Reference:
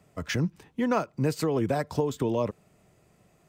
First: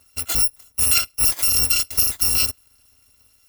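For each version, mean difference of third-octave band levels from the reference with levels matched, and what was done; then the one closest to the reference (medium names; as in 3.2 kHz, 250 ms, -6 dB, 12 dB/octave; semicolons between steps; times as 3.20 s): 14.5 dB: bit-reversed sample order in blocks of 256 samples; in parallel at -8.5 dB: small samples zeroed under -37 dBFS; on the sum: trim +5 dB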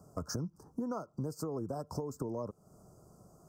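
7.0 dB: elliptic band-stop 1.3–5.2 kHz, stop band 40 dB; compression 6:1, threshold -39 dBFS, peak gain reduction 17 dB; trim +3.5 dB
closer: second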